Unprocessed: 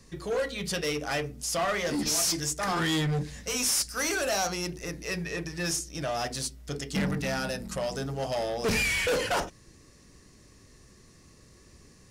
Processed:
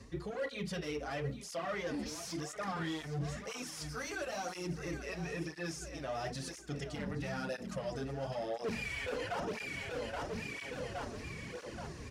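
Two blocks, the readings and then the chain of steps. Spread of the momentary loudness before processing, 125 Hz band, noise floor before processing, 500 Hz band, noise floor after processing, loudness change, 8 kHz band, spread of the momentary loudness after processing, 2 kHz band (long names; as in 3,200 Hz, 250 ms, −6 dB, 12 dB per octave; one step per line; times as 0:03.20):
8 LU, −7.0 dB, −56 dBFS, −7.5 dB, −48 dBFS, −11.0 dB, −17.0 dB, 5 LU, −9.5 dB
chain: repeating echo 823 ms, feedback 45%, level −15.5 dB
brickwall limiter −26 dBFS, peak gain reduction 7.5 dB
reversed playback
downward compressor 12 to 1, threshold −46 dBFS, peak gain reduction 17.5 dB
reversed playback
low-pass filter 2,600 Hz 6 dB per octave
through-zero flanger with one copy inverted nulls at 0.99 Hz, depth 6.6 ms
level +13 dB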